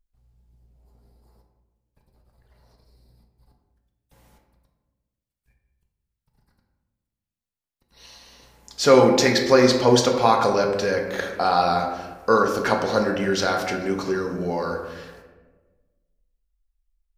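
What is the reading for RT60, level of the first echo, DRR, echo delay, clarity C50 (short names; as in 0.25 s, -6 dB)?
1.3 s, none, 1.5 dB, none, 5.5 dB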